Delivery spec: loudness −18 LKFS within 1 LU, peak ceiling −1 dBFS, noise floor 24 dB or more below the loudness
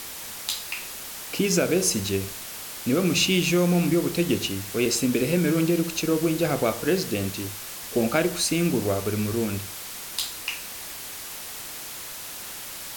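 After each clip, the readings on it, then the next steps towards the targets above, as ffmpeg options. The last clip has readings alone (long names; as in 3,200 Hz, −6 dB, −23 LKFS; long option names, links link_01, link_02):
background noise floor −37 dBFS; target noise floor −50 dBFS; integrated loudness −25.5 LKFS; sample peak −8.5 dBFS; target loudness −18.0 LKFS
→ -af "afftdn=noise_reduction=13:noise_floor=-37"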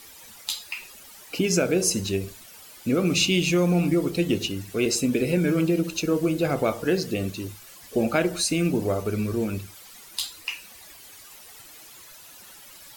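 background noise floor −47 dBFS; target noise floor −49 dBFS
→ -af "afftdn=noise_reduction=6:noise_floor=-47"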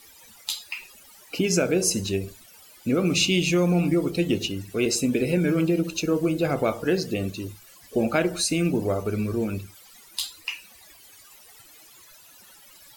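background noise floor −51 dBFS; integrated loudness −24.5 LKFS; sample peak −9.0 dBFS; target loudness −18.0 LKFS
→ -af "volume=6.5dB"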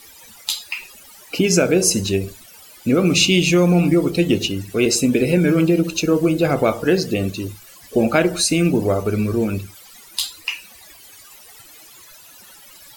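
integrated loudness −18.0 LKFS; sample peak −2.5 dBFS; background noise floor −45 dBFS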